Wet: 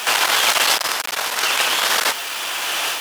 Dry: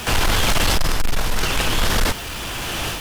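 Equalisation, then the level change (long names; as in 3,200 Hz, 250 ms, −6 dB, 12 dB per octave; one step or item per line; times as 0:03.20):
high-pass filter 710 Hz 12 dB per octave
+5.0 dB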